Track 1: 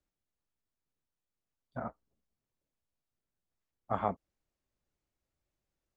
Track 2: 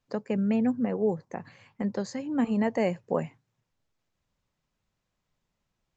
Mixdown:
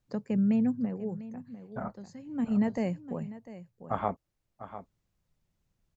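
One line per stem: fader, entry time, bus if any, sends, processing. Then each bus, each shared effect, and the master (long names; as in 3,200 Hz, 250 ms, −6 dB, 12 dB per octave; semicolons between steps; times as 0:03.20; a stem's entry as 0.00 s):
+1.5 dB, 0.00 s, no send, echo send −12.5 dB, no processing
−7.5 dB, 0.00 s, no send, echo send −16.5 dB, bass and treble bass +13 dB, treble +4 dB; automatic ducking −15 dB, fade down 1.15 s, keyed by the first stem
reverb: not used
echo: single-tap delay 698 ms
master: no processing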